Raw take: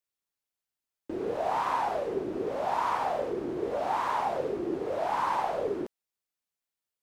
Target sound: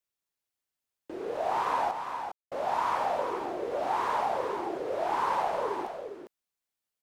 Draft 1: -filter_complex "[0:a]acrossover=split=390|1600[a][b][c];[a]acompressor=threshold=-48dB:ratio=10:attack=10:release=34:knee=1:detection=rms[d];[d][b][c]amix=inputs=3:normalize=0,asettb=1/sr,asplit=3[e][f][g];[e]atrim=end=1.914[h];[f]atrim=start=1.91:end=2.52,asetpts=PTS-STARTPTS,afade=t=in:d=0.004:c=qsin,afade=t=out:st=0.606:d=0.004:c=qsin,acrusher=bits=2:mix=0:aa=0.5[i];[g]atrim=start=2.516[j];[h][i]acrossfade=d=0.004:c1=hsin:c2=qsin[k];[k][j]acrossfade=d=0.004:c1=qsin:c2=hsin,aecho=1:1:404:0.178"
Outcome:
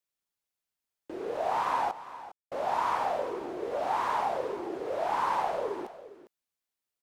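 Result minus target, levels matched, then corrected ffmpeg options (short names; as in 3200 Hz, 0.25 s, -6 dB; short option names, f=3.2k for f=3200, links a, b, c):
echo-to-direct -8 dB
-filter_complex "[0:a]acrossover=split=390|1600[a][b][c];[a]acompressor=threshold=-48dB:ratio=10:attack=10:release=34:knee=1:detection=rms[d];[d][b][c]amix=inputs=3:normalize=0,asettb=1/sr,asplit=3[e][f][g];[e]atrim=end=1.914[h];[f]atrim=start=1.91:end=2.52,asetpts=PTS-STARTPTS,afade=t=in:d=0.004:c=qsin,afade=t=out:st=0.606:d=0.004:c=qsin,acrusher=bits=2:mix=0:aa=0.5[i];[g]atrim=start=2.516[j];[h][i]acrossfade=d=0.004:c1=hsin:c2=qsin[k];[k][j]acrossfade=d=0.004:c1=qsin:c2=hsin,aecho=1:1:404:0.447"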